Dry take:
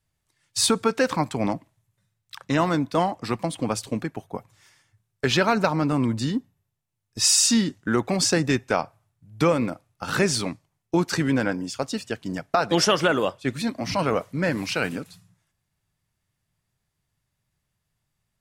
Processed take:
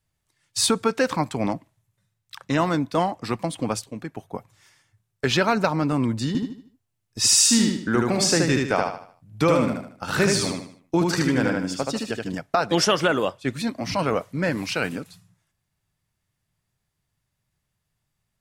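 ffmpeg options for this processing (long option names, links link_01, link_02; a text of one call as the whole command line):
ffmpeg -i in.wav -filter_complex "[0:a]asettb=1/sr,asplit=3[link_01][link_02][link_03];[link_01]atrim=end=6.274[link_04];[link_02]atrim=start=6.27:end=12.35,asetpts=PTS-STARTPTS,afade=type=in:duration=0.004:curve=qsin,afade=type=out:start_time=6.076:duration=0.004:curve=qsin,aecho=1:1:76|152|228|304|380:0.708|0.262|0.0969|0.0359|0.0133,atrim=end_sample=268128[link_05];[link_03]atrim=start=12.346[link_06];[link_04][link_05]acrossfade=duration=0.004:curve1=hsin:curve2=qsin[link_07];[link_07][link_06]acrossfade=duration=0.004:curve1=qsin:curve2=hsin,asplit=2[link_08][link_09];[link_08]atrim=end=3.84,asetpts=PTS-STARTPTS,afade=type=out:start_time=3.836:duration=0.004:curve=hsin:silence=0.223872[link_10];[link_09]atrim=start=3.84,asetpts=PTS-STARTPTS,afade=type=in:duration=0.42:silence=0.223872[link_11];[link_10][link_11]concat=n=2:v=0:a=1" out.wav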